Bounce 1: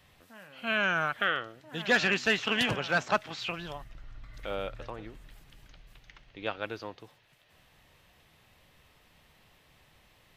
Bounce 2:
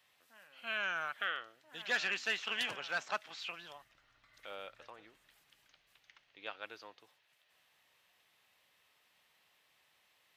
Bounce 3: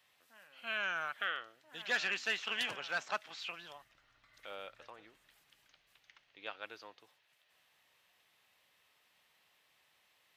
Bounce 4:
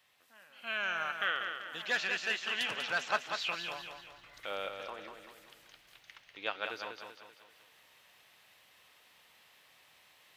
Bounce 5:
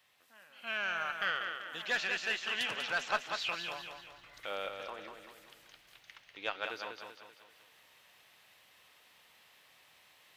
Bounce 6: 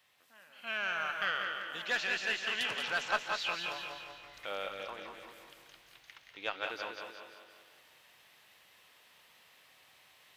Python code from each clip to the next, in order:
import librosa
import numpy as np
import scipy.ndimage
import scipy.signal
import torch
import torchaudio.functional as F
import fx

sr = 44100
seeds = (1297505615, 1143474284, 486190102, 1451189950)

y1 = fx.highpass(x, sr, hz=1100.0, slope=6)
y1 = y1 * librosa.db_to_amplitude(-6.5)
y2 = y1
y3 = fx.rider(y2, sr, range_db=4, speed_s=0.5)
y3 = fx.echo_feedback(y3, sr, ms=193, feedback_pct=45, wet_db=-6.5)
y3 = y3 * librosa.db_to_amplitude(4.0)
y4 = fx.diode_clip(y3, sr, knee_db=-17.0)
y5 = fx.echo_feedback(y4, sr, ms=172, feedback_pct=50, wet_db=-8.5)